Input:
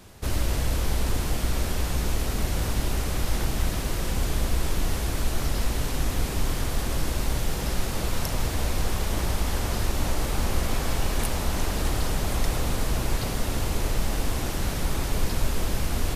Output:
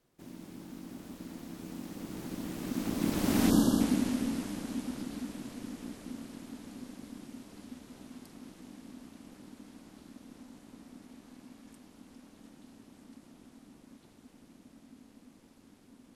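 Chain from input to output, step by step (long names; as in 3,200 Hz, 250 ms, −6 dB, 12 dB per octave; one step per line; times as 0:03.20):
source passing by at 0:03.48, 56 m/s, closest 12 metres
time-frequency box erased 0:03.50–0:03.80, 1,500–3,000 Hz
ring modulation 250 Hz
level +3.5 dB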